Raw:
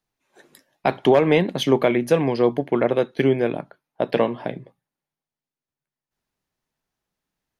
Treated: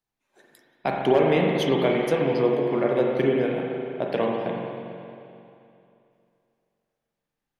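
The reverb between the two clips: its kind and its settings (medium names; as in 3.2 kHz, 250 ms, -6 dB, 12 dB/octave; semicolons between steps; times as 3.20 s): spring tank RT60 2.7 s, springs 39/44 ms, chirp 70 ms, DRR -1 dB; trim -6 dB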